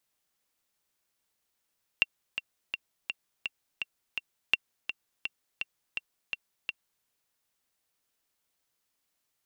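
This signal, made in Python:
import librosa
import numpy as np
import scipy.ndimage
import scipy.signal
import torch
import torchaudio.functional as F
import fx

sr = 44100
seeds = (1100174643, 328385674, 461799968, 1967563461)

y = fx.click_track(sr, bpm=167, beats=7, bars=2, hz=2740.0, accent_db=10.0, level_db=-8.5)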